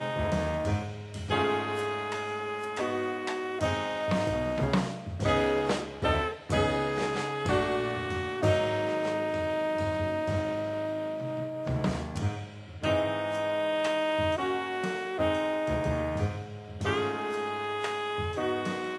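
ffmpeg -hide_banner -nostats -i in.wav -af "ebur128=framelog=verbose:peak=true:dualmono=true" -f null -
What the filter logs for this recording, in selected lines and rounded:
Integrated loudness:
  I:         -27.0 LUFS
  Threshold: -37.0 LUFS
Loudness range:
  LRA:         2.8 LU
  Threshold: -46.9 LUFS
  LRA low:   -28.4 LUFS
  LRA high:  -25.6 LUFS
True peak:
  Peak:      -12.5 dBFS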